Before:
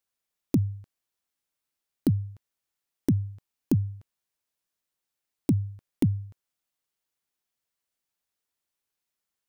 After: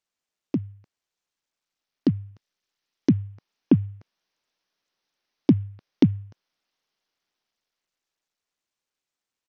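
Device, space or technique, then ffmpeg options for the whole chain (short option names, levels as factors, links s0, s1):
Bluetooth headset: -filter_complex "[0:a]asettb=1/sr,asplit=3[s0][s1][s2];[s0]atrim=end=2.314[s3];[s1]atrim=start=2.31:end=3.11,asetpts=PTS-STARTPTS,afade=t=in:d=0.004:c=qsin,afade=t=out:st=0.796:d=0.004:c=qsin,equalizer=f=690:w=0.67:g=-4[s4];[s2]atrim=start=3.106[s5];[s3][s4]acrossfade=d=0.004:c1=hsin:c2=qsin[s6];[s6][s5]acrossfade=d=0.004:c1=qsin:c2=hsin,highpass=170,dynaudnorm=f=260:g=17:m=2.82,aresample=16000,aresample=44100" -ar 48000 -c:a sbc -b:a 64k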